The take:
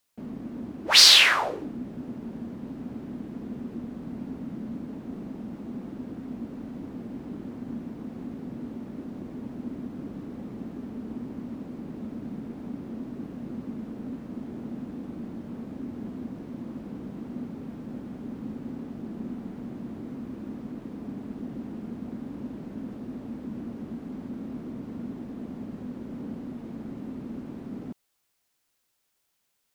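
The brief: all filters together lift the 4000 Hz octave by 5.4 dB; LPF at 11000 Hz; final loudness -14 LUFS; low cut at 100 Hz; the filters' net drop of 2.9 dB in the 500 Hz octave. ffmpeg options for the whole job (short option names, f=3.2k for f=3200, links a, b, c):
-af "highpass=100,lowpass=11k,equalizer=f=500:t=o:g=-4,equalizer=f=4k:t=o:g=6.5,volume=-3.5dB"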